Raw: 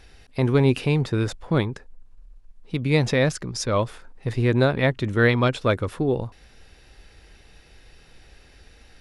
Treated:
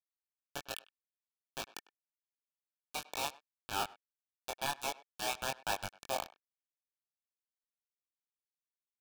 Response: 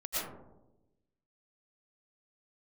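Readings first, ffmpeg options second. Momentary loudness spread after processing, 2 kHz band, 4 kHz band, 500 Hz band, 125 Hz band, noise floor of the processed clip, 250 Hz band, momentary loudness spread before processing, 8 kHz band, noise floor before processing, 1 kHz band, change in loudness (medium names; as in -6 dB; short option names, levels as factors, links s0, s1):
11 LU, -16.0 dB, -8.5 dB, -22.5 dB, -35.0 dB, under -85 dBFS, -30.5 dB, 12 LU, -5.5 dB, -53 dBFS, -8.5 dB, -17.0 dB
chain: -filter_complex "[0:a]areverse,acompressor=threshold=0.0251:ratio=6,areverse,acrusher=bits=6:mode=log:mix=0:aa=0.000001,highpass=f=310:t=q:w=0.5412,highpass=f=310:t=q:w=1.307,lowpass=f=3200:t=q:w=0.5176,lowpass=f=3200:t=q:w=0.7071,lowpass=f=3200:t=q:w=1.932,afreqshift=280,acrusher=bits=4:mix=0:aa=0.000001,flanger=delay=20:depth=2.9:speed=1.2,asuperstop=centerf=2000:order=12:qfactor=4.5,asplit=2[s0][s1];[s1]adelay=100,highpass=300,lowpass=3400,asoftclip=type=hard:threshold=0.02,volume=0.112[s2];[s0][s2]amix=inputs=2:normalize=0,volume=1.33"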